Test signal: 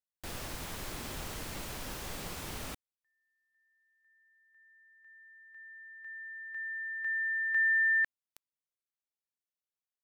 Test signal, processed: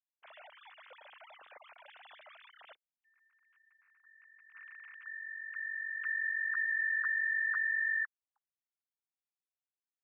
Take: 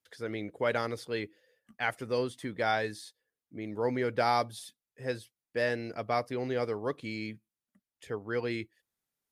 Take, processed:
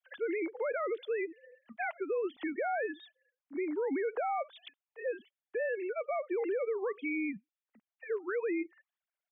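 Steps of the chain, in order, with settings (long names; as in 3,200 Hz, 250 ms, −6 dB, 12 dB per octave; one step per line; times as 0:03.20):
three sine waves on the formant tracks
downward compressor 4 to 1, threshold −33 dBFS
brickwall limiter −35 dBFS
level +8 dB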